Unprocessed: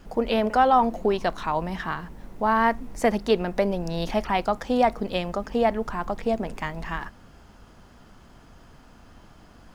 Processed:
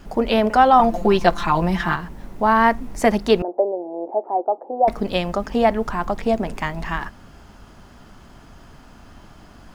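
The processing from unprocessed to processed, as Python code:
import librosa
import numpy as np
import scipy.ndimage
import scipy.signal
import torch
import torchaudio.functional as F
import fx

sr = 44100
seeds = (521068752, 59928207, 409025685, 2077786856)

y = fx.cheby1_bandpass(x, sr, low_hz=330.0, high_hz=830.0, order=3, at=(3.42, 4.88))
y = fx.notch(y, sr, hz=490.0, q=13.0)
y = fx.comb(y, sr, ms=5.8, depth=0.98, at=(0.79, 1.96))
y = y * librosa.db_to_amplitude(5.5)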